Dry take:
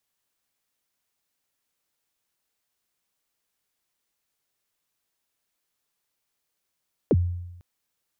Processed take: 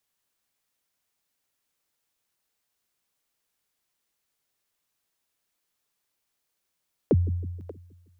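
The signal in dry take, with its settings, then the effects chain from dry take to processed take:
kick drum length 0.50 s, from 550 Hz, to 88 Hz, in 41 ms, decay 0.96 s, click off, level -14 dB
two-band feedback delay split 370 Hz, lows 158 ms, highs 584 ms, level -15 dB

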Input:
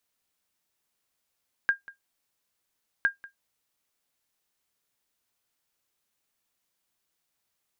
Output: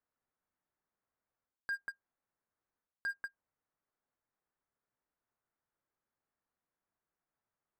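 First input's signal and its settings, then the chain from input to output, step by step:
sonar ping 1.61 kHz, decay 0.13 s, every 1.36 s, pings 2, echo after 0.19 s, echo -21 dB -14 dBFS
low-pass 1.7 kHz 24 dB/octave; waveshaping leveller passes 2; reverse; compression 16:1, threshold -36 dBFS; reverse

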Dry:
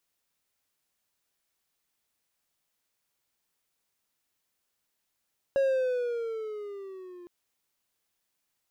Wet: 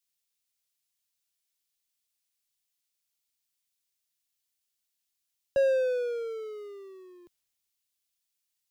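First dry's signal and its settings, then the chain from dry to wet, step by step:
gliding synth tone triangle, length 1.71 s, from 552 Hz, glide -8 st, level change -23 dB, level -19 dB
three bands expanded up and down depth 40%

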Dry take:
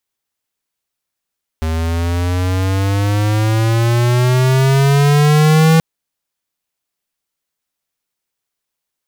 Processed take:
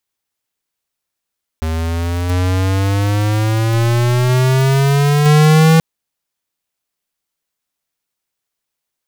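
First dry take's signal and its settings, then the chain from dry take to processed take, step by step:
gliding synth tone square, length 4.18 s, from 79.2 Hz, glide +12.5 st, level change +8.5 dB, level -9 dB
block-companded coder 3-bit

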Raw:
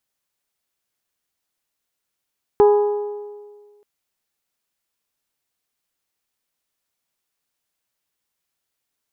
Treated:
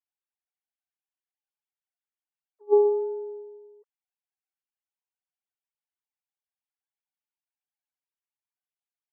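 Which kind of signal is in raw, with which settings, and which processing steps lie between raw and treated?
metal hit bell, length 1.23 s, lowest mode 414 Hz, decay 1.66 s, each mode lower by 8.5 dB, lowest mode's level -8 dB
formants replaced by sine waves; attacks held to a fixed rise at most 570 dB/s

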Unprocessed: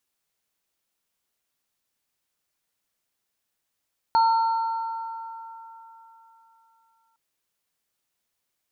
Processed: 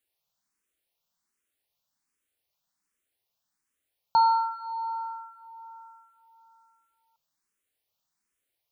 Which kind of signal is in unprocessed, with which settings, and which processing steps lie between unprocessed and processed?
sine partials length 3.01 s, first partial 908 Hz, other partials 1.36/4.31 kHz, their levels -13.5/-17 dB, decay 3.42 s, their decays 4.17/1.55 s, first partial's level -15 dB
barber-pole phaser +1.3 Hz

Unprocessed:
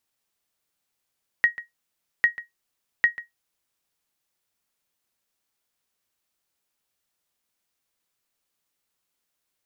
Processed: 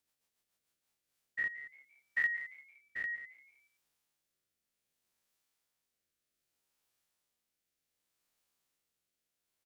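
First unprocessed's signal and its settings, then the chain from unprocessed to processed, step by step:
sonar ping 1.89 kHz, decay 0.15 s, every 0.80 s, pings 3, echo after 0.14 s, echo -17 dB -9 dBFS
spectrogram pixelated in time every 100 ms; rotary cabinet horn 7 Hz, later 0.65 Hz, at 0.49 s; frequency-shifting echo 172 ms, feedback 41%, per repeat +140 Hz, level -18.5 dB

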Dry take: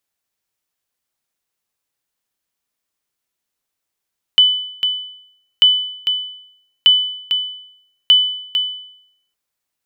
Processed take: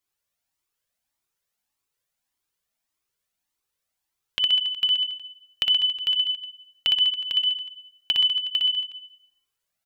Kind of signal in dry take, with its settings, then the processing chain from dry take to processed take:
sonar ping 3 kHz, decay 0.73 s, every 1.24 s, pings 4, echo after 0.45 s, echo -8 dB -3.5 dBFS
compression, threshold -18 dBFS; on a send: reverse bouncing-ball echo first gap 60 ms, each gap 1.1×, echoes 5; on the sum: Shepard-style flanger rising 1.7 Hz

